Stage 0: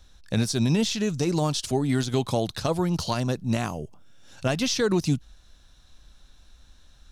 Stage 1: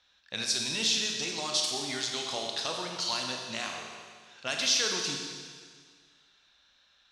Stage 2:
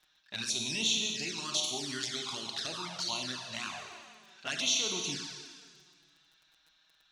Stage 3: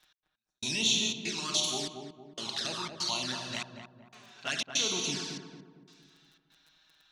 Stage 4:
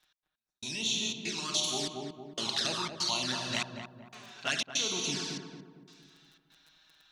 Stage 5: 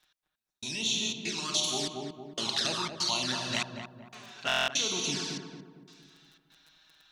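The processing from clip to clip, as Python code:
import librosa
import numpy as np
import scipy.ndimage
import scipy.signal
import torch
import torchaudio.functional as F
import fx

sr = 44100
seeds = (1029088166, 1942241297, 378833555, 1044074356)

y1 = fx.bandpass_q(x, sr, hz=4300.0, q=0.67)
y1 = fx.env_lowpass(y1, sr, base_hz=2900.0, full_db=-29.5)
y1 = fx.rev_schroeder(y1, sr, rt60_s=1.8, comb_ms=28, drr_db=1.0)
y1 = F.gain(torch.from_numpy(y1), 2.0).numpy()
y2 = fx.peak_eq(y1, sr, hz=500.0, db=-10.0, octaves=0.28)
y2 = fx.dmg_crackle(y2, sr, seeds[0], per_s=10.0, level_db=-45.0)
y2 = fx.env_flanger(y2, sr, rest_ms=6.7, full_db=-28.0)
y3 = fx.step_gate(y2, sr, bpm=120, pattern='x....xxxx.xxxx', floor_db=-60.0, edge_ms=4.5)
y3 = fx.echo_filtered(y3, sr, ms=229, feedback_pct=47, hz=960.0, wet_db=-4.5)
y3 = F.gain(torch.from_numpy(y3), 2.5).numpy()
y4 = fx.rider(y3, sr, range_db=5, speed_s=0.5)
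y5 = fx.buffer_glitch(y4, sr, at_s=(4.47,), block=1024, repeats=8)
y5 = F.gain(torch.from_numpy(y5), 1.5).numpy()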